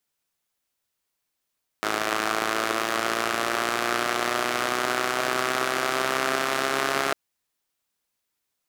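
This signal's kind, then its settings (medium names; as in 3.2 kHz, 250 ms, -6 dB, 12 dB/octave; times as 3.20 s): four-cylinder engine model, changing speed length 5.30 s, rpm 3200, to 4100, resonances 390/660/1200 Hz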